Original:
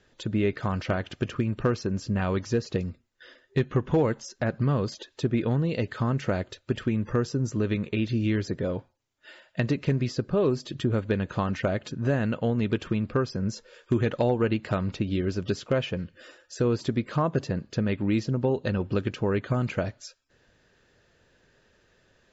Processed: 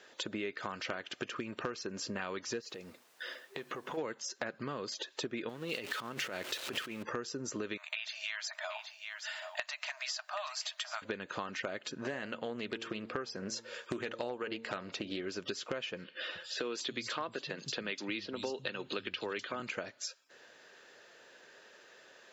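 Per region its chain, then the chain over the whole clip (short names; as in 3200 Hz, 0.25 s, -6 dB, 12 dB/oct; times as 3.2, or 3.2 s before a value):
2.6–3.97 compressor, threshold -38 dBFS + added noise pink -71 dBFS
5.49–7.03 zero-crossing step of -39 dBFS + bell 3000 Hz +4 dB 0.68 oct + negative-ratio compressor -29 dBFS
7.77–11.02 brick-wall FIR high-pass 600 Hz + high shelf 5900 Hz +7.5 dB + echo 0.778 s -14 dB
11.95–15.27 de-hum 113.8 Hz, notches 8 + Doppler distortion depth 0.16 ms
16.04–19.6 bell 3500 Hz +10 dB 1.2 oct + three bands offset in time mids, highs, lows 0.25/0.31 s, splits 160/4500 Hz
whole clip: HPF 470 Hz 12 dB/oct; dynamic EQ 690 Hz, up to -7 dB, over -44 dBFS, Q 0.91; compressor 4:1, threshold -45 dBFS; gain +8 dB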